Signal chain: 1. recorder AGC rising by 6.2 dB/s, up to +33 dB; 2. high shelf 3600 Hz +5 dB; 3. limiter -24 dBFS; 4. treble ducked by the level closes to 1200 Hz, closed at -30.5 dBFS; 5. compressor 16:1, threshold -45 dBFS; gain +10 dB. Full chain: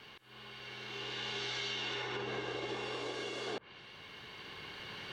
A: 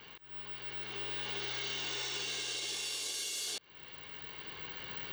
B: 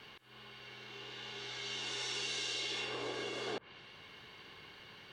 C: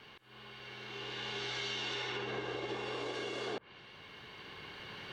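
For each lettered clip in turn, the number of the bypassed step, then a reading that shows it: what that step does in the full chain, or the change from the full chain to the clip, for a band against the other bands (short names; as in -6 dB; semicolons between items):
4, 8 kHz band +19.0 dB; 1, momentary loudness spread change +3 LU; 2, momentary loudness spread change +1 LU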